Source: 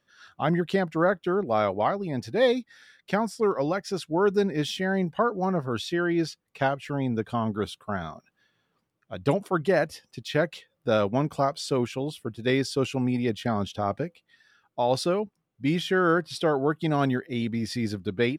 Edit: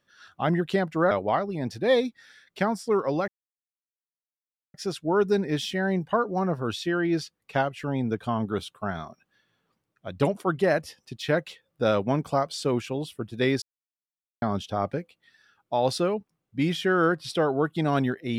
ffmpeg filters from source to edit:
-filter_complex "[0:a]asplit=5[s0][s1][s2][s3][s4];[s0]atrim=end=1.112[s5];[s1]atrim=start=1.628:end=3.8,asetpts=PTS-STARTPTS,afade=t=out:st=2.168:d=0.004:c=hsin,apad=pad_dur=1.46[s6];[s2]atrim=start=3.8:end=12.68,asetpts=PTS-STARTPTS,afade=t=in:d=0.004:c=hsin,afade=t=out:st=8.876:d=0.004:c=hsin[s7];[s3]atrim=start=12.68:end=13.48,asetpts=PTS-STARTPTS,volume=0[s8];[s4]atrim=start=13.48,asetpts=PTS-STARTPTS,afade=t=in:d=0.004:c=hsin[s9];[s6][s7][s8][s9]concat=n=4:v=0:a=1[s10];[s5][s10]acrossfade=d=0.004:c1=hsin:c2=hsin"

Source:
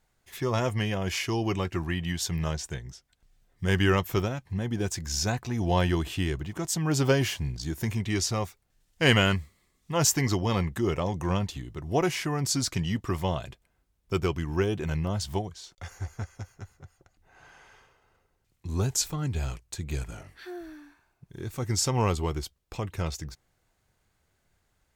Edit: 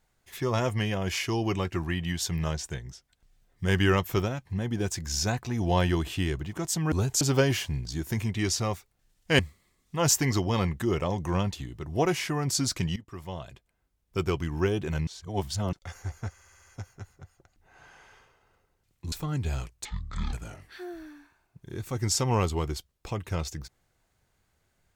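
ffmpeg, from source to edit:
-filter_complex "[0:a]asplit=15[s0][s1][s2][s3][s4][s5][s6][s7][s8][s9][s10][s11][s12][s13][s14];[s0]atrim=end=6.922[s15];[s1]atrim=start=18.728:end=19.022[s16];[s2]atrim=start=6.918:end=9.102[s17];[s3]atrim=start=9.348:end=12.92,asetpts=PTS-STARTPTS,afade=t=out:st=3.568:d=0.004:c=hsin:silence=0.133352[s18];[s4]atrim=start=12.92:end=15.032,asetpts=PTS-STARTPTS,afade=t=in:d=1.45:silence=0.133352[s19];[s5]atrim=start=15.028:end=15.692,asetpts=PTS-STARTPTS,areverse[s20];[s6]atrim=start=15.688:end=16.342[s21];[s7]atrim=start=16.268:end=16.342[s22];[s8]atrim=start=16.268:end=16.342[s23];[s9]atrim=start=16.268:end=16.342[s24];[s10]atrim=start=16.268:end=16.342[s25];[s11]atrim=start=16.268:end=18.732[s26];[s12]atrim=start=19.018:end=19.754[s27];[s13]atrim=start=19.75:end=20,asetpts=PTS-STARTPTS,asetrate=22932,aresample=44100[s28];[s14]atrim=start=19.996[s29];[s15][s16]acrossfade=d=0.004:c1=hsin:c2=hsin[s30];[s30][s17]acrossfade=d=0.004:c1=hsin:c2=hsin[s31];[s18][s19]concat=n=2:v=0:a=1[s32];[s31][s32]acrossfade=d=0.004:c1=hsin:c2=hsin[s33];[s33][s20]acrossfade=d=0.004:c1=hsin:c2=hsin[s34];[s34][s21]acrossfade=d=0.004:c1=hsin:c2=hsin[s35];[s35][s22]acrossfade=d=0.004:c1=hsin:c2=hsin[s36];[s36][s23]acrossfade=d=0.004:c1=hsin:c2=hsin[s37];[s37][s24]acrossfade=d=0.004:c1=hsin:c2=hsin[s38];[s38][s25]acrossfade=d=0.004:c1=hsin:c2=hsin[s39];[s39][s26]acrossfade=d=0.004:c1=hsin:c2=hsin[s40];[s40][s27]acrossfade=d=0.004:c1=hsin:c2=hsin[s41];[s41][s28]acrossfade=d=0.004:c1=hsin:c2=hsin[s42];[s42][s29]acrossfade=d=0.004:c1=hsin:c2=hsin"

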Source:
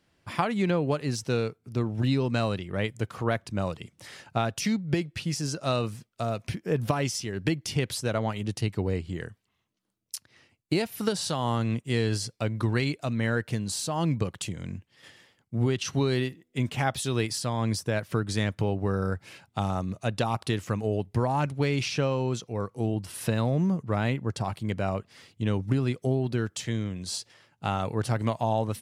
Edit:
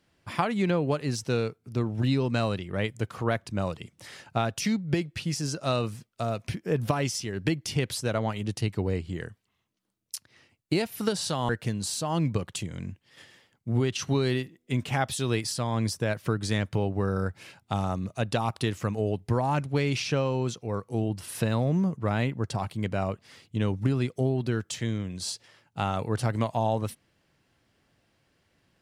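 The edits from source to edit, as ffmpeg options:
-filter_complex "[0:a]asplit=2[s0][s1];[s0]atrim=end=11.492[s2];[s1]atrim=start=13.348[s3];[s2][s3]acrossfade=d=0.004:c1=hsin:c2=hsin"

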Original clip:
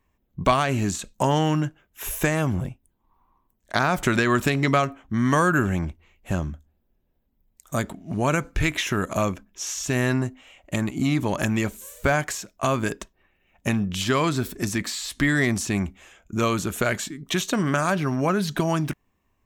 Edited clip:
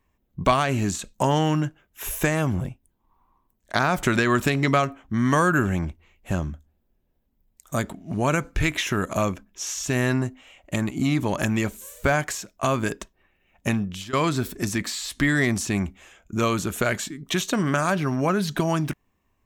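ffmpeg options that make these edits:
-filter_complex "[0:a]asplit=2[s0][s1];[s0]atrim=end=14.13,asetpts=PTS-STARTPTS,afade=t=out:st=13.73:d=0.4:silence=0.105925[s2];[s1]atrim=start=14.13,asetpts=PTS-STARTPTS,afade=t=in:d=0.004:c=hsin:silence=0.105925[s3];[s2][s3]concat=n=2:v=0:a=1"

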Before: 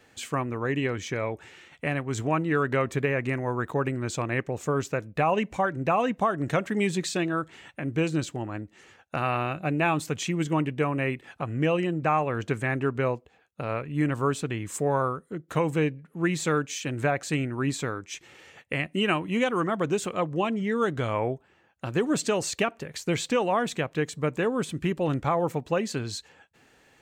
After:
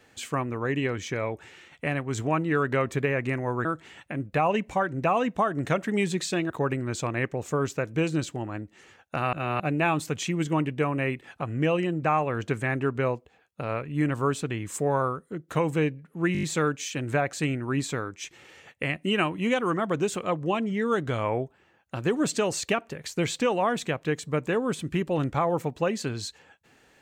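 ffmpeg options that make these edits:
-filter_complex "[0:a]asplit=12[s0][s1][s2][s3][s4][s5][s6][s7][s8][s9][s10][s11];[s0]atrim=end=3.652[s12];[s1]atrim=start=7.328:end=7.942[s13];[s2]atrim=start=5.088:end=7.332[s14];[s3]atrim=start=3.648:end=5.092[s15];[s4]atrim=start=7.938:end=9.332[s16];[s5]atrim=start=9.328:end=9.602,asetpts=PTS-STARTPTS,areverse[s17];[s6]atrim=start=9.598:end=16.352[s18];[s7]atrim=start=16.328:end=16.352[s19];[s8]atrim=start=16.328:end=16.352[s20];[s9]atrim=start=16.328:end=16.352[s21];[s10]atrim=start=16.328:end=16.352[s22];[s11]atrim=start=16.328[s23];[s12][s13]acrossfade=d=0.004:c1=hsin:c2=hsin[s24];[s24][s14]acrossfade=d=0.004:c1=hsin:c2=hsin[s25];[s25][s15]acrossfade=d=0.004:c1=hsin:c2=hsin[s26];[s26][s16]acrossfade=d=0.004:c1=hsin:c2=hsin[s27];[s27][s17]acrossfade=d=0.004:c1=hsin:c2=hsin[s28];[s28][s18]acrossfade=d=0.004:c1=hsin:c2=hsin[s29];[s29][s19]acrossfade=d=0.004:c1=hsin:c2=hsin[s30];[s30][s20]acrossfade=d=0.004:c1=hsin:c2=hsin[s31];[s31][s21]acrossfade=d=0.004:c1=hsin:c2=hsin[s32];[s32][s22]acrossfade=d=0.004:c1=hsin:c2=hsin[s33];[s33][s23]acrossfade=d=0.004:c1=hsin:c2=hsin"

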